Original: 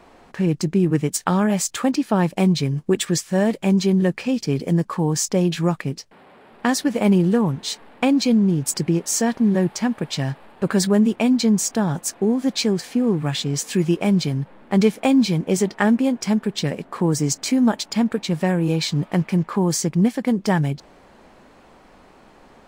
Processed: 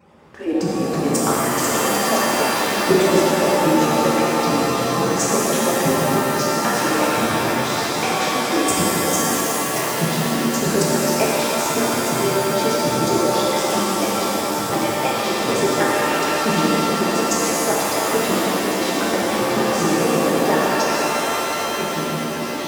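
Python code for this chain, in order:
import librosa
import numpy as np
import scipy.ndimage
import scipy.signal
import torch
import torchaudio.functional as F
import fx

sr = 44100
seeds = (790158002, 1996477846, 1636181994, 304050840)

y = fx.hpss_only(x, sr, part='percussive')
y = scipy.signal.sosfilt(scipy.signal.butter(2, 84.0, 'highpass', fs=sr, output='sos'), y)
y = fx.low_shelf(y, sr, hz=430.0, db=8.0)
y = fx.notch(y, sr, hz=4200.0, q=11.0)
y = fx.level_steps(y, sr, step_db=11)
y = fx.echo_pitch(y, sr, ms=212, semitones=-3, count=2, db_per_echo=-6.0)
y = fx.rev_shimmer(y, sr, seeds[0], rt60_s=4.0, semitones=7, shimmer_db=-2, drr_db=-6.5)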